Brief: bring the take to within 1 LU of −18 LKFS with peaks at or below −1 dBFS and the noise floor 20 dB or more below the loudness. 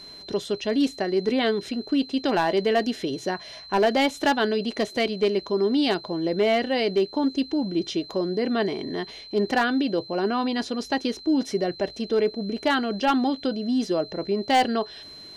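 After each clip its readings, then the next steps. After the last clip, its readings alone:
share of clipped samples 0.5%; peaks flattened at −14.5 dBFS; interfering tone 4,100 Hz; level of the tone −41 dBFS; integrated loudness −25.0 LKFS; sample peak −14.5 dBFS; target loudness −18.0 LKFS
→ clipped peaks rebuilt −14.5 dBFS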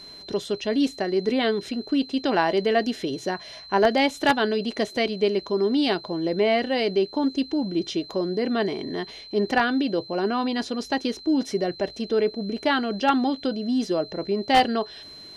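share of clipped samples 0.0%; interfering tone 4,100 Hz; level of the tone −41 dBFS
→ notch filter 4,100 Hz, Q 30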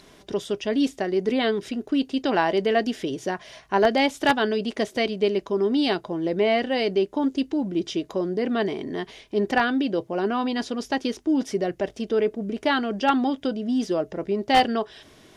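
interfering tone none found; integrated loudness −24.5 LKFS; sample peak −5.0 dBFS; target loudness −18.0 LKFS
→ level +6.5 dB
brickwall limiter −1 dBFS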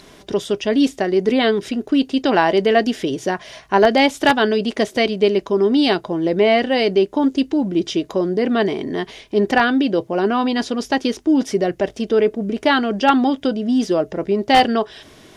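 integrated loudness −18.0 LKFS; sample peak −1.0 dBFS; background noise floor −46 dBFS

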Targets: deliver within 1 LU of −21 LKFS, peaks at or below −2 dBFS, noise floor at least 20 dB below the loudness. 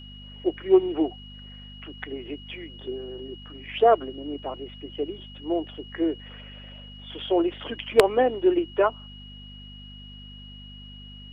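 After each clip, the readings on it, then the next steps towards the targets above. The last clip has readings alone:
mains hum 50 Hz; hum harmonics up to 250 Hz; level of the hum −42 dBFS; interfering tone 2,900 Hz; level of the tone −45 dBFS; integrated loudness −25.5 LKFS; sample peak −4.5 dBFS; target loudness −21.0 LKFS
→ hum removal 50 Hz, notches 5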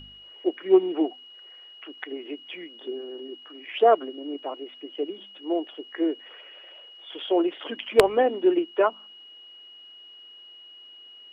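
mains hum none found; interfering tone 2,900 Hz; level of the tone −45 dBFS
→ notch filter 2,900 Hz, Q 30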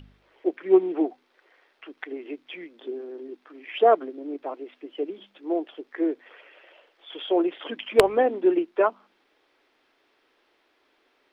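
interfering tone none found; integrated loudness −25.5 LKFS; sample peak −4.5 dBFS; target loudness −21.0 LKFS
→ level +4.5 dB
brickwall limiter −2 dBFS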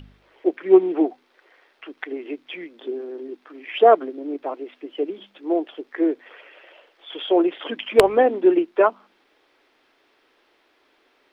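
integrated loudness −21.0 LKFS; sample peak −2.0 dBFS; background noise floor −63 dBFS

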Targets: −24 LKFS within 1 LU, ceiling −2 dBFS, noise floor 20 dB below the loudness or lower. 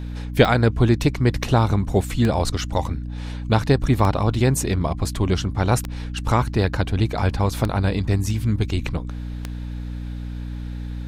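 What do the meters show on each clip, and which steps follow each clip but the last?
number of clicks 6; mains hum 60 Hz; hum harmonics up to 300 Hz; level of the hum −27 dBFS; integrated loudness −21.5 LKFS; sample peak −2.0 dBFS; target loudness −24.0 LKFS
→ click removal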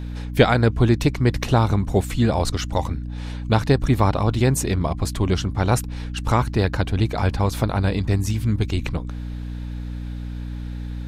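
number of clicks 0; mains hum 60 Hz; hum harmonics up to 300 Hz; level of the hum −27 dBFS
→ mains-hum notches 60/120/180/240/300 Hz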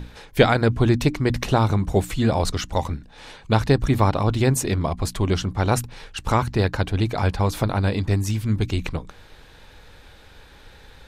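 mains hum none found; integrated loudness −22.0 LKFS; sample peak −2.0 dBFS; target loudness −24.0 LKFS
→ level −2 dB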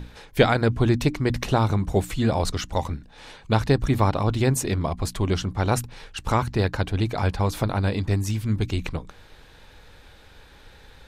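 integrated loudness −24.0 LKFS; sample peak −4.0 dBFS; background noise floor −50 dBFS

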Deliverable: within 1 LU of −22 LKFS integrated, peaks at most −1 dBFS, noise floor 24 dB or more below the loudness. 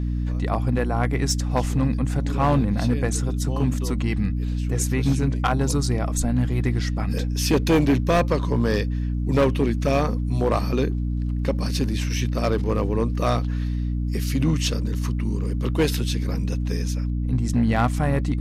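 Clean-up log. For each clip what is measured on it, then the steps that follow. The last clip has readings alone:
share of clipped samples 1.0%; peaks flattened at −13.0 dBFS; mains hum 60 Hz; hum harmonics up to 300 Hz; level of the hum −22 dBFS; integrated loudness −23.5 LKFS; sample peak −13.0 dBFS; target loudness −22.0 LKFS
→ clipped peaks rebuilt −13 dBFS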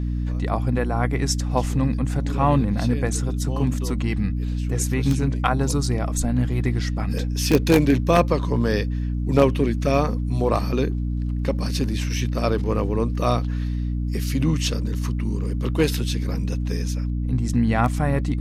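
share of clipped samples 0.0%; mains hum 60 Hz; hum harmonics up to 300 Hz; level of the hum −22 dBFS
→ hum removal 60 Hz, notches 5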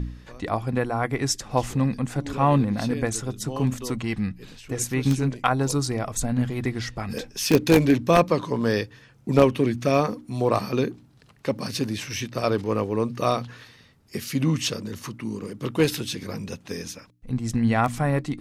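mains hum none found; integrated loudness −25.0 LKFS; sample peak −3.0 dBFS; target loudness −22.0 LKFS
→ level +3 dB
brickwall limiter −1 dBFS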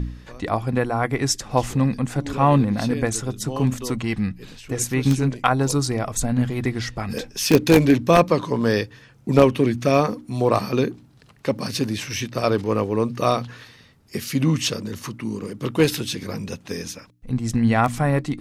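integrated loudness −22.0 LKFS; sample peak −1.0 dBFS; background noise floor −51 dBFS

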